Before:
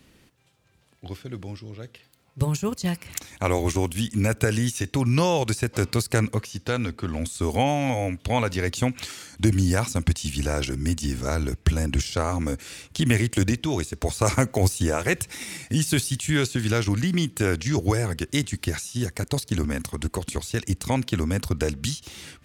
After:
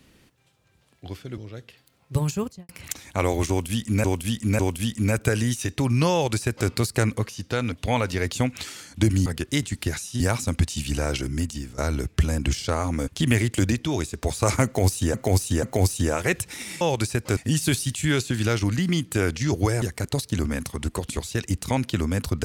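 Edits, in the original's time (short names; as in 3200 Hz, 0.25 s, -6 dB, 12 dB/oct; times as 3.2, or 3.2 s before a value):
1.38–1.64 cut
2.61–2.95 studio fade out
3.75–4.3 loop, 3 plays
5.29–5.85 copy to 15.62
6.88–8.14 cut
10.79–11.26 fade out, to -15.5 dB
12.56–12.87 cut
14.44–14.93 loop, 3 plays
18.07–19.01 move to 9.68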